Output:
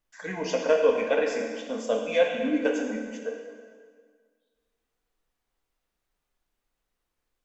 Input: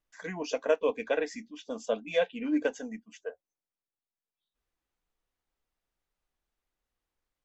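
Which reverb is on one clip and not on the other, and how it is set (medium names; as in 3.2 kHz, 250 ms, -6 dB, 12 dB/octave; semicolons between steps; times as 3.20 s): plate-style reverb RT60 1.8 s, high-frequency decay 0.85×, DRR 0.5 dB; trim +2.5 dB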